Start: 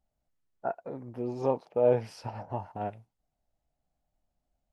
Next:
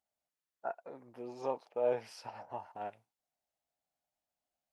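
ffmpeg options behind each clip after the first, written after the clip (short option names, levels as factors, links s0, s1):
-af "highpass=f=900:p=1,volume=0.794"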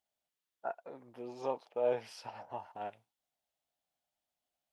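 -af "equalizer=f=3300:t=o:w=0.51:g=5.5"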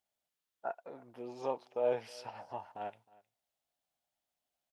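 -af "aecho=1:1:313:0.0708"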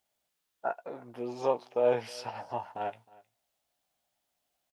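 -filter_complex "[0:a]asplit=2[s0][s1];[s1]adelay=17,volume=0.299[s2];[s0][s2]amix=inputs=2:normalize=0,volume=2.24"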